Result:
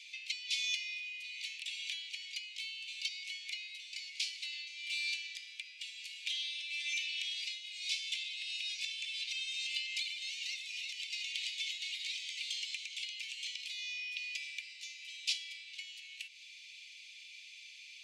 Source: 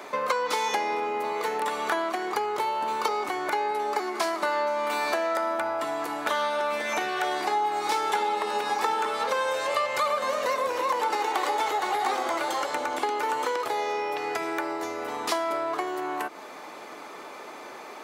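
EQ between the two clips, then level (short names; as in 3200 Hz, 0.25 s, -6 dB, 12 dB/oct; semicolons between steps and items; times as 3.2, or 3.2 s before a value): steep high-pass 2400 Hz 72 dB/oct; air absorption 110 m; +3.5 dB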